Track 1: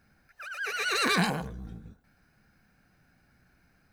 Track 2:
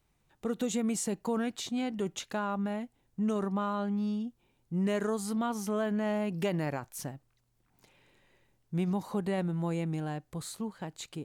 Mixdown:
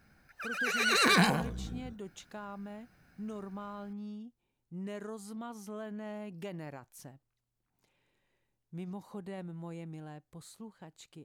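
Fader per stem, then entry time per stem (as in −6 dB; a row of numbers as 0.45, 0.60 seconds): +1.0, −11.0 decibels; 0.00, 0.00 seconds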